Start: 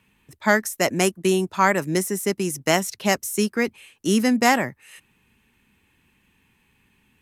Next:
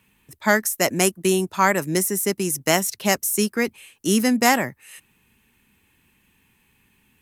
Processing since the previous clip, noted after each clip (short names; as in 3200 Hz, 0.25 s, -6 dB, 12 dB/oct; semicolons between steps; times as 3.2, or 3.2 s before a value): high shelf 9100 Hz +11 dB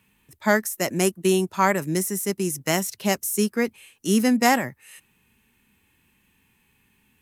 harmonic-percussive split percussive -6 dB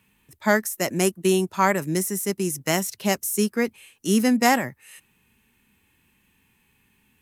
nothing audible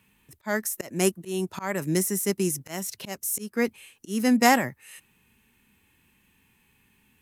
auto swell 0.274 s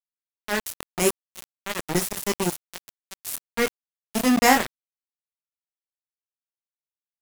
doubler 23 ms -4 dB; sample gate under -20.5 dBFS; gain +1 dB